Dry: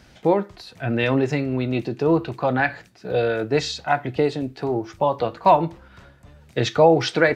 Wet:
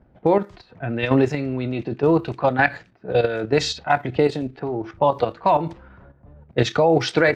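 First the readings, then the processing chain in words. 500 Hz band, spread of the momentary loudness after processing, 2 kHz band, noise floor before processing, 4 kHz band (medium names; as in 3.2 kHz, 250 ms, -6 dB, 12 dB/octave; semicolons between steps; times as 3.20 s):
+0.5 dB, 10 LU, +1.0 dB, -52 dBFS, +0.5 dB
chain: level held to a coarse grid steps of 10 dB; level-controlled noise filter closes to 750 Hz, open at -21.5 dBFS; trim +5 dB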